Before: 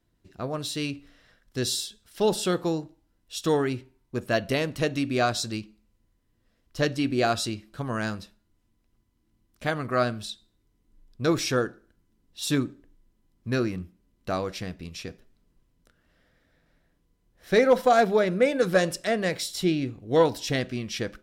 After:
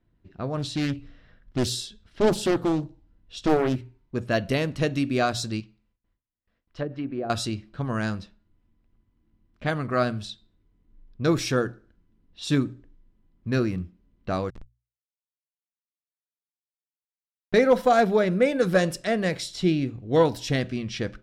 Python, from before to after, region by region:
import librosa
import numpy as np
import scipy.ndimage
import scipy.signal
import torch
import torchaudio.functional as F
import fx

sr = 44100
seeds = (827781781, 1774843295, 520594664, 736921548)

y = fx.chain(x, sr, fx.low_shelf(hz=230.0, db=6.5),
    fx.doppler_dist(depth_ms=0.78), at=(0.57, 3.76))
y = fx.chain(y, sr, fx.env_lowpass_down(base_hz=530.0, full_db=-19.5),
    fx.gate_hold(open_db=-58.0, close_db=-65.0, hold_ms=71.0, range_db=-21, attack_ms=1.4, release_ms=100.0),
    fx.low_shelf(hz=490.0, db=-9.5), at=(5.6, 7.3))
y = fx.chain(y, sr, fx.law_mismatch(coded='A'),
    fx.schmitt(flips_db=-28.0), at=(14.5, 17.54))
y = fx.hum_notches(y, sr, base_hz=60, count=2)
y = fx.env_lowpass(y, sr, base_hz=2900.0, full_db=-22.5)
y = fx.bass_treble(y, sr, bass_db=5, treble_db=-2)